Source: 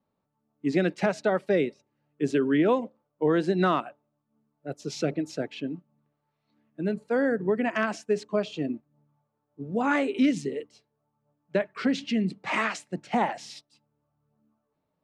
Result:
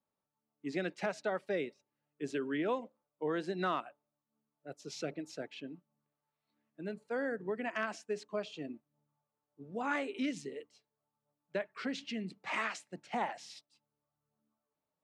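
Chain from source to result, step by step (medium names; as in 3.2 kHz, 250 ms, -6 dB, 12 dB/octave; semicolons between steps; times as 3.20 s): bass shelf 400 Hz -8.5 dB; trim -7.5 dB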